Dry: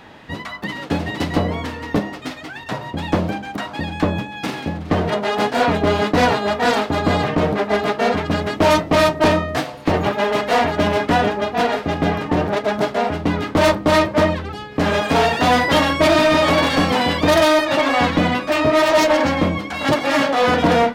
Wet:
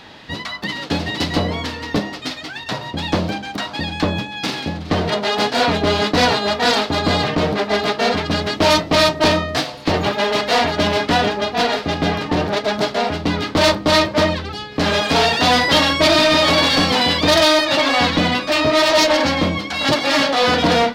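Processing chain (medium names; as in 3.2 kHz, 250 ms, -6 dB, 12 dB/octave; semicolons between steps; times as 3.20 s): peaking EQ 4.4 kHz +11 dB 1.2 oct; in parallel at -10 dB: hard clipper -15.5 dBFS, distortion -9 dB; on the sum: trim -2.5 dB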